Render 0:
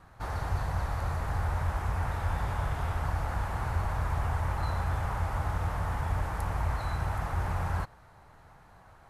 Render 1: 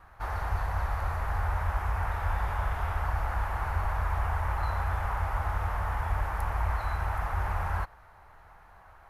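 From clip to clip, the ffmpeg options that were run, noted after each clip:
-af "equalizer=f=125:t=o:w=1:g=-11,equalizer=f=250:t=o:w=1:g=-10,equalizer=f=500:t=o:w=1:g=-4,equalizer=f=4000:t=o:w=1:g=-6,equalizer=f=8000:t=o:w=1:g=-10,volume=1.68"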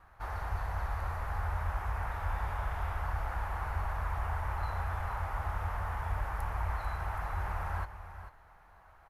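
-af "aecho=1:1:443:0.266,volume=0.562"

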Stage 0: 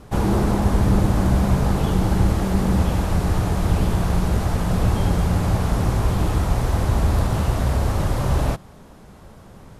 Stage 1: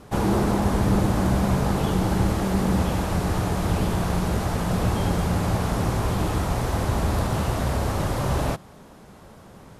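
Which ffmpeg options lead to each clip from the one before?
-af "lowshelf=f=85:g=-10"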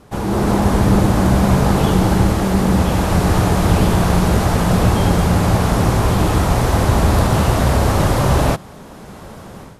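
-af "dynaudnorm=f=260:g=3:m=3.76"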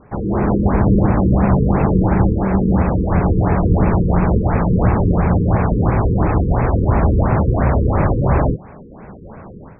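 -af "afftfilt=real='re*lt(b*sr/1024,480*pow(2700/480,0.5+0.5*sin(2*PI*2.9*pts/sr)))':imag='im*lt(b*sr/1024,480*pow(2700/480,0.5+0.5*sin(2*PI*2.9*pts/sr)))':win_size=1024:overlap=0.75"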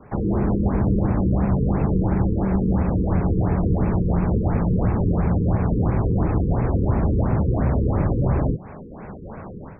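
-filter_complex "[0:a]acrossover=split=110|440[s0][s1][s2];[s0]acompressor=threshold=0.0794:ratio=4[s3];[s1]acompressor=threshold=0.0891:ratio=4[s4];[s2]acompressor=threshold=0.0224:ratio=4[s5];[s3][s4][s5]amix=inputs=3:normalize=0"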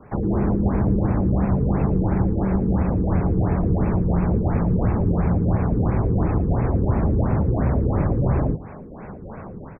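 -af "aecho=1:1:114:0.133"

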